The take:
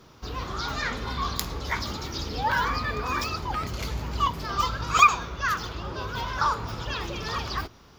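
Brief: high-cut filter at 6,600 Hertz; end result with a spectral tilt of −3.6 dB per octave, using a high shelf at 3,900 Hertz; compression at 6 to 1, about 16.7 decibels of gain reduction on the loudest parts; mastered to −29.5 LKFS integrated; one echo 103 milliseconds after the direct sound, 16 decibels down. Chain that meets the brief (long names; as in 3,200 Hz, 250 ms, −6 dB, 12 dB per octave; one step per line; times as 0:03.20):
low-pass filter 6,600 Hz
high-shelf EQ 3,900 Hz +6.5 dB
downward compressor 6 to 1, threshold −28 dBFS
single-tap delay 103 ms −16 dB
level +2.5 dB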